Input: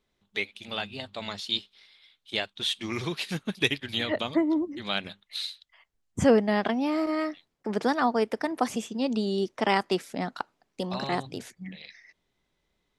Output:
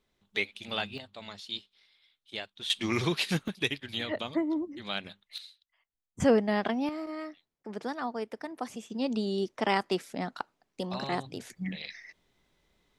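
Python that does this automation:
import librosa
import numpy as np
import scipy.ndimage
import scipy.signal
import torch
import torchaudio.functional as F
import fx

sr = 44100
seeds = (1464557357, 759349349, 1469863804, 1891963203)

y = fx.gain(x, sr, db=fx.steps((0.0, 0.0), (0.98, -8.5), (2.7, 3.0), (3.48, -5.0), (5.38, -15.0), (6.2, -3.0), (6.89, -10.0), (8.9, -3.0), (11.5, 5.0)))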